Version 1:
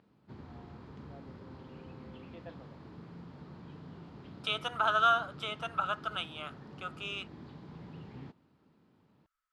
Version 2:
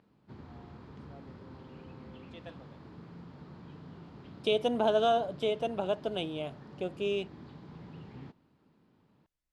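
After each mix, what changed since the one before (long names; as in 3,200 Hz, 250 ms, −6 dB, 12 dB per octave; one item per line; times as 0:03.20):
first voice: remove low-pass filter 1,900 Hz
second voice: remove high-pass with resonance 1,300 Hz, resonance Q 13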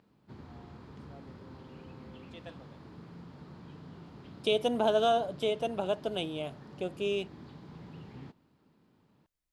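master: add high-shelf EQ 8,100 Hz +11.5 dB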